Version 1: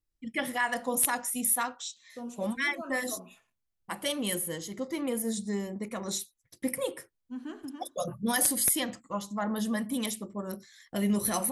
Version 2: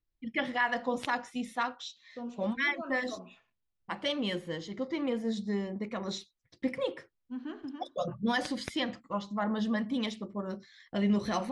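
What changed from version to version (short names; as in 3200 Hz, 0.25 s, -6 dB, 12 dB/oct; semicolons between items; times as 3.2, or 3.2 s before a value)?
master: add LPF 4700 Hz 24 dB/oct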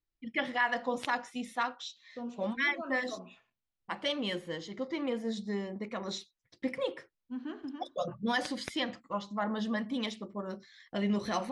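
first voice: add low shelf 210 Hz -6.5 dB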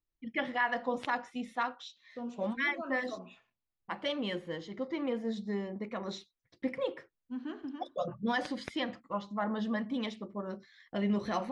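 first voice: add LPF 2600 Hz 6 dB/oct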